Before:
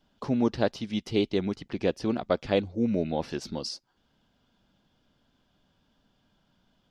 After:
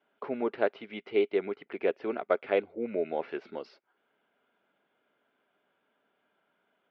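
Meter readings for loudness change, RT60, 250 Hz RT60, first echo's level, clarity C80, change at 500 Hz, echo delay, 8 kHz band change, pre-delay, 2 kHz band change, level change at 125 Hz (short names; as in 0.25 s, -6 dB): -2.5 dB, none, none, none, none, 0.0 dB, none, under -30 dB, none, +1.0 dB, -19.5 dB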